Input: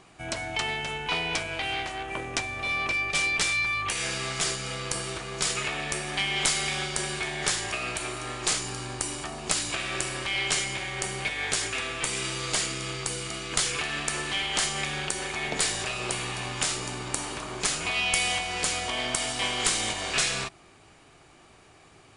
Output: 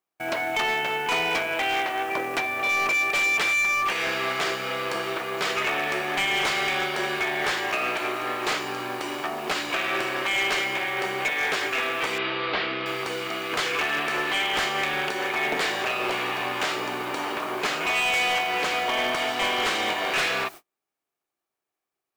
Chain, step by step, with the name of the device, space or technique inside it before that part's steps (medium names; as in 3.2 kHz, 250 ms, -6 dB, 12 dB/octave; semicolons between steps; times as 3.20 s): aircraft radio (band-pass 320–2500 Hz; hard clipper -28.5 dBFS, distortion -14 dB; white noise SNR 23 dB; gate -47 dBFS, range -41 dB); 12.18–12.86 s: steep low-pass 4.3 kHz 36 dB/octave; trim +8.5 dB